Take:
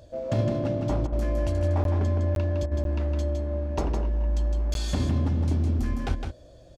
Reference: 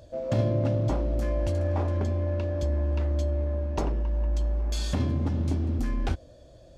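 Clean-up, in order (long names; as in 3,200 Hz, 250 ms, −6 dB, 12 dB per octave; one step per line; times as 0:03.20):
repair the gap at 0:01.84/0:02.35/0:02.84/0:04.74, 12 ms
repair the gap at 0:01.07/0:02.66, 52 ms
echo removal 160 ms −5.5 dB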